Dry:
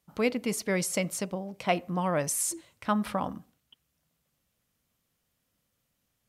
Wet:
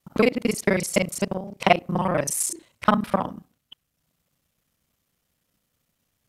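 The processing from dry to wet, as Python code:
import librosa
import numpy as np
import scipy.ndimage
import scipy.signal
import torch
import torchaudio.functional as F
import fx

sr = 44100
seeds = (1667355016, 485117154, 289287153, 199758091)

y = fx.local_reverse(x, sr, ms=32.0)
y = fx.transient(y, sr, attack_db=8, sustain_db=-3)
y = y * 10.0 ** (3.5 / 20.0)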